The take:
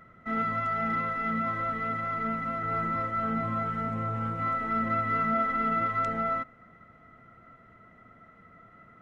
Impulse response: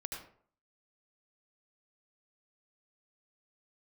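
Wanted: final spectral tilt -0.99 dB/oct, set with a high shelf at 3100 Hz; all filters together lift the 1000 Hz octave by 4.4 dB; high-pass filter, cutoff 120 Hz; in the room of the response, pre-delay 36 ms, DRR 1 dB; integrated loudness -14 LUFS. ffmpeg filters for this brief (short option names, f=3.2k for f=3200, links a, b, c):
-filter_complex "[0:a]highpass=120,equalizer=f=1k:t=o:g=8.5,highshelf=f=3.1k:g=-4.5,asplit=2[a][b];[1:a]atrim=start_sample=2205,adelay=36[c];[b][c]afir=irnorm=-1:irlink=0,volume=-0.5dB[d];[a][d]amix=inputs=2:normalize=0,volume=8dB"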